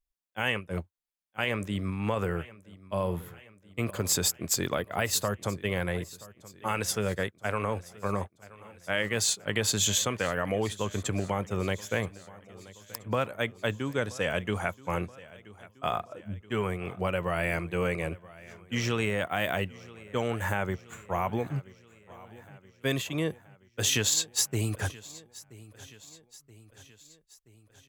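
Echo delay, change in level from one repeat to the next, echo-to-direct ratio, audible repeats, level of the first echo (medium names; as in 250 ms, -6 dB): 977 ms, -5.0 dB, -18.5 dB, 4, -20.0 dB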